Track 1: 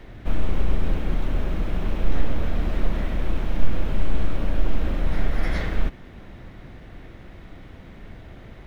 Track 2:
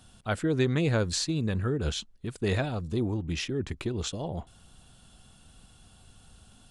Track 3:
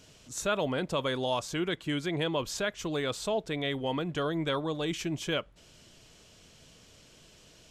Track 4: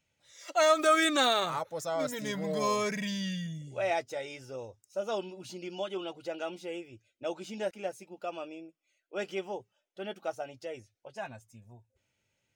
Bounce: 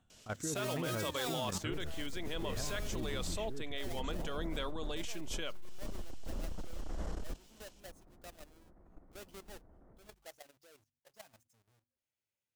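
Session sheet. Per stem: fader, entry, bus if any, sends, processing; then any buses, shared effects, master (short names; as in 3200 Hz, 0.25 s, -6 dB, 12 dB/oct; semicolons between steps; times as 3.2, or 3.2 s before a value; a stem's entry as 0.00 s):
-10.0 dB, 1.45 s, no send, LPF 1200 Hz 24 dB/oct; bell 110 Hz -7.5 dB 0.91 oct; overloaded stage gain 19 dB
-8.5 dB, 0.00 s, no send, running mean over 9 samples
-2.5 dB, 0.10 s, no send, HPF 270 Hz 6 dB/oct
-17.0 dB, 0.00 s, no send, half-waves squared off; low shelf 360 Hz -4.5 dB; de-hum 81.13 Hz, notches 3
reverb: off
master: high shelf 4400 Hz +7 dB; de-hum 46.7 Hz, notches 3; level quantiser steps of 12 dB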